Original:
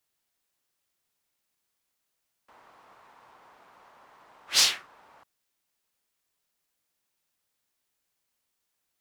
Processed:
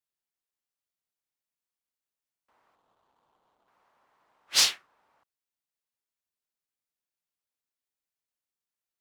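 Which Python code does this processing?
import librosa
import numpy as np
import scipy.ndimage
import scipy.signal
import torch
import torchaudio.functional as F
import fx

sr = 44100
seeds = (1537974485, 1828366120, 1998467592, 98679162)

y = fx.median_filter(x, sr, points=25, at=(2.75, 3.68))
y = fx.upward_expand(y, sr, threshold_db=-46.0, expansion=1.5)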